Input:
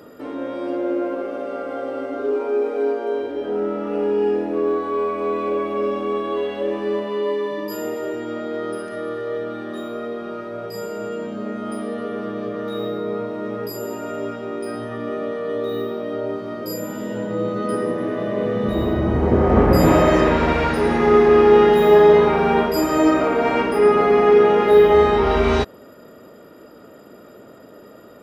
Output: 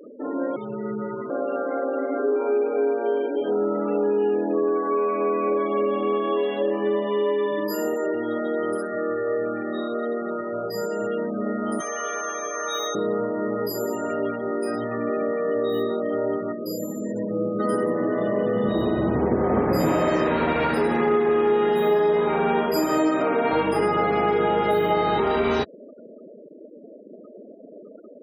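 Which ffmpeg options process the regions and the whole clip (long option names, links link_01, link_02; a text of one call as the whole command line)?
ffmpeg -i in.wav -filter_complex "[0:a]asettb=1/sr,asplit=3[link_01][link_02][link_03];[link_01]atrim=end=0.564[link_04];[link_02]atrim=start=0.56:end=1.3,asetpts=PTS-STARTPTS,afade=type=in:duration=0.004:curve=qsin,afade=type=out:start_time=0.736:duration=0.004:curve=qsin,highpass=frequency=1000:poles=1,highshelf=frequency=6000:gain=4,afreqshift=-140[link_05];[link_03]atrim=start=1.296[link_06];[link_04][link_05]acrossfade=duration=0.004:curve1=hsin:curve2=qsin[link_07];[link_07][link_06]acrossfade=duration=0.004:curve1=qsin:curve2=hsin,asettb=1/sr,asplit=3[link_08][link_09][link_10];[link_08]atrim=end=11.804[link_11];[link_09]atrim=start=11.8:end=12.95,asetpts=PTS-STARTPTS,afade=type=in:duration=0.004:curve=qsin,afade=type=out:start_time=1.146:duration=0.004:curve=qsin,highpass=1000,acontrast=59,aeval=exprs='val(0)+0.0141*sin(2*PI*6300*n/s)':channel_layout=same[link_12];[link_10]atrim=start=12.946[link_13];[link_11][link_12]acrossfade=duration=0.004:curve1=hsin:curve2=qsin[link_14];[link_14][link_13]acrossfade=duration=0.004:curve1=qsin:curve2=hsin,asettb=1/sr,asplit=3[link_15][link_16][link_17];[link_15]atrim=end=16.524[link_18];[link_16]atrim=start=16.52:end=17.6,asetpts=PTS-STARTPTS,afade=type=in:duration=0.004:curve=qsin,afade=type=out:start_time=1.076:duration=0.004:curve=qsin,acrossover=split=4600[link_19][link_20];[link_20]acompressor=threshold=-40dB:ratio=4:attack=1:release=60[link_21];[link_19][link_21]amix=inputs=2:normalize=0,highpass=frequency=120:poles=1,equalizer=frequency=1300:width_type=o:width=2.2:gain=-9.5[link_22];[link_17]atrim=start=17.596[link_23];[link_18][link_22]acrossfade=duration=0.004:curve1=hsin:curve2=qsin[link_24];[link_24][link_23]acrossfade=duration=0.004:curve1=qsin:curve2=hsin,asettb=1/sr,asplit=3[link_25][link_26][link_27];[link_25]atrim=end=23.514[link_28];[link_26]atrim=start=23.51:end=25.2,asetpts=PTS-STARTPTS,afade=type=in:duration=0.004:curve=qsin,afade=type=out:start_time=1.686:duration=0.004:curve=qsin,aecho=1:1:6.2:0.72,atrim=end_sample=74529,aeval=exprs='val(0)+0.0562*(sin(2*PI*50*n/s)+sin(2*PI*2*50*n/s)/2+sin(2*PI*3*50*n/s)/3+sin(2*PI*4*50*n/s)/4+sin(2*PI*5*50*n/s)/5)':channel_layout=same[link_29];[link_27]atrim=start=25.196[link_30];[link_28][link_29]acrossfade=duration=0.004:curve1=hsin:curve2=qsin[link_31];[link_31][link_30]acrossfade=duration=0.004:curve1=qsin:curve2=hsin,highpass=130,afftfilt=real='re*gte(hypot(re,im),0.0224)':imag='im*gte(hypot(re,im),0.0224)':win_size=1024:overlap=0.75,acompressor=threshold=-21dB:ratio=4,volume=2dB" out.wav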